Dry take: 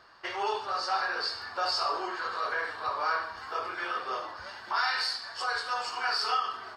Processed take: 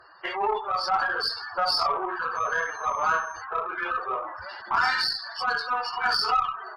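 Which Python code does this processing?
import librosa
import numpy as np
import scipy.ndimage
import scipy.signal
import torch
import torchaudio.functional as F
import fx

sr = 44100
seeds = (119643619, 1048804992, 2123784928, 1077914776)

y = fx.spec_gate(x, sr, threshold_db=-15, keep='strong')
y = fx.cheby_harmonics(y, sr, harmonics=(4, 7), levels_db=(-26, -34), full_scale_db=-16.5)
y = fx.dmg_tone(y, sr, hz=6300.0, level_db=-54.0, at=(2.35, 3.4), fade=0.02)
y = y * librosa.db_to_amplitude(6.0)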